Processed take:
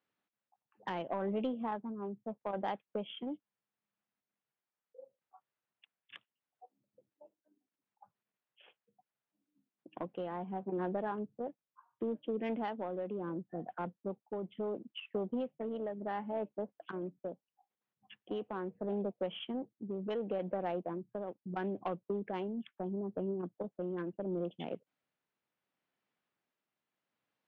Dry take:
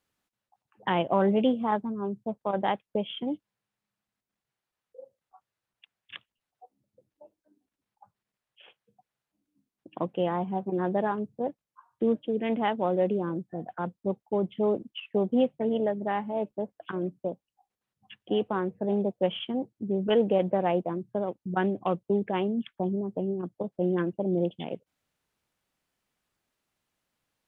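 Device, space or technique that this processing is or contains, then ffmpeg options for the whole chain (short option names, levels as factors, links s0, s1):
AM radio: -af "highpass=160,lowpass=3300,acompressor=threshold=0.0501:ratio=6,asoftclip=type=tanh:threshold=0.0891,tremolo=f=0.73:d=0.34,volume=0.631"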